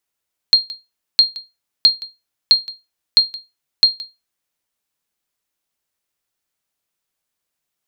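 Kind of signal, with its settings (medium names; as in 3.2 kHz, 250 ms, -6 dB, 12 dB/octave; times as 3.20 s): sonar ping 4.22 kHz, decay 0.22 s, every 0.66 s, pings 6, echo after 0.17 s, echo -19.5 dB -2 dBFS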